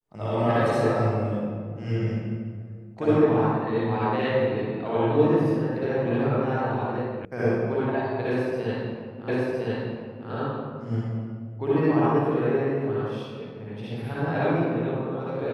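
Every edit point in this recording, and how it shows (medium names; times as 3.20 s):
7.25 s: sound stops dead
9.28 s: repeat of the last 1.01 s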